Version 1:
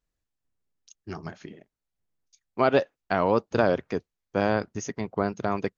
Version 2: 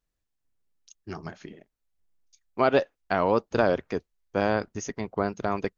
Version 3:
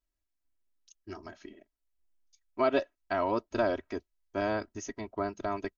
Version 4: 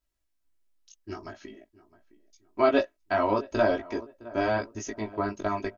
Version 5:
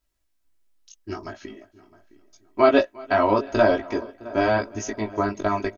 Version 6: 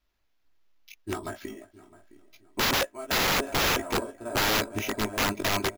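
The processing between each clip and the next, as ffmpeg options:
ffmpeg -i in.wav -af "asubboost=boost=4.5:cutoff=53" out.wav
ffmpeg -i in.wav -af "aecho=1:1:3.1:0.86,volume=-8dB" out.wav
ffmpeg -i in.wav -filter_complex "[0:a]asplit=2[link_01][link_02];[link_02]adelay=662,lowpass=frequency=1500:poles=1,volume=-19dB,asplit=2[link_03][link_04];[link_04]adelay=662,lowpass=frequency=1500:poles=1,volume=0.37,asplit=2[link_05][link_06];[link_06]adelay=662,lowpass=frequency=1500:poles=1,volume=0.37[link_07];[link_01][link_03][link_05][link_07]amix=inputs=4:normalize=0,flanger=delay=17:depth=2.1:speed=0.47,volume=7.5dB" out.wav
ffmpeg -i in.wav -af "aecho=1:1:355|710|1065:0.0708|0.0354|0.0177,volume=5.5dB" out.wav
ffmpeg -i in.wav -af "acrusher=samples=5:mix=1:aa=0.000001,aeval=exprs='(mod(9.44*val(0)+1,2)-1)/9.44':channel_layout=same" out.wav

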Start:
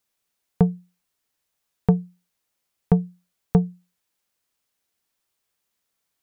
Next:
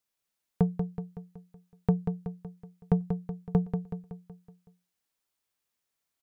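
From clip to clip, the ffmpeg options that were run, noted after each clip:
ffmpeg -i in.wav -af "aecho=1:1:187|374|561|748|935|1122:0.473|0.241|0.123|0.0628|0.032|0.0163,volume=-7dB" out.wav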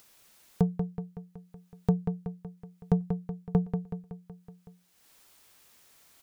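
ffmpeg -i in.wav -af "acompressor=mode=upward:threshold=-40dB:ratio=2.5" out.wav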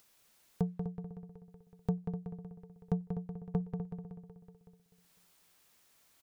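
ffmpeg -i in.wav -filter_complex "[0:a]asplit=2[link_01][link_02];[link_02]adelay=250,lowpass=frequency=1600:poles=1,volume=-9dB,asplit=2[link_03][link_04];[link_04]adelay=250,lowpass=frequency=1600:poles=1,volume=0.36,asplit=2[link_05][link_06];[link_06]adelay=250,lowpass=frequency=1600:poles=1,volume=0.36,asplit=2[link_07][link_08];[link_08]adelay=250,lowpass=frequency=1600:poles=1,volume=0.36[link_09];[link_01][link_03][link_05][link_07][link_09]amix=inputs=5:normalize=0,volume=-7.5dB" out.wav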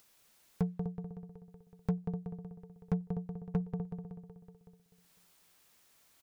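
ffmpeg -i in.wav -af "volume=23.5dB,asoftclip=hard,volume=-23.5dB,volume=1dB" out.wav

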